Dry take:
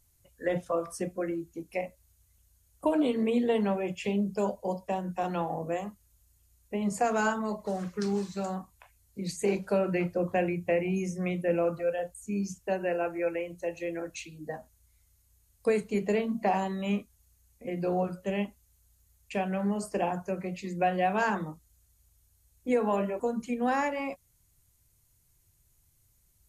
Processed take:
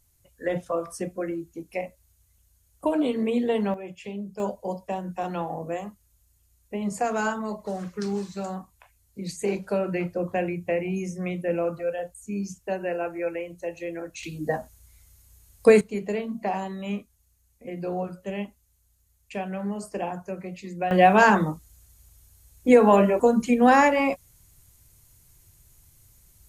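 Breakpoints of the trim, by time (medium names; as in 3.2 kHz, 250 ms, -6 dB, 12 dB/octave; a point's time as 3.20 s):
+2 dB
from 3.74 s -6 dB
from 4.40 s +1 dB
from 14.23 s +11 dB
from 15.81 s -1 dB
from 20.91 s +11 dB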